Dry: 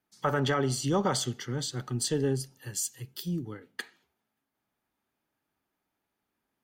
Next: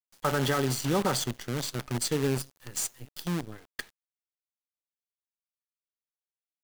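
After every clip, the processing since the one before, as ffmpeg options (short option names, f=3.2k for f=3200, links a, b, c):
-af "acrusher=bits=6:dc=4:mix=0:aa=0.000001"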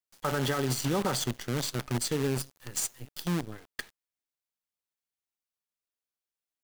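-af "alimiter=limit=-21dB:level=0:latency=1:release=46,volume=1dB"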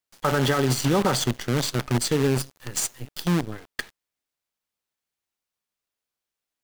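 -af "highshelf=f=6.4k:g=-4.5,volume=7.5dB"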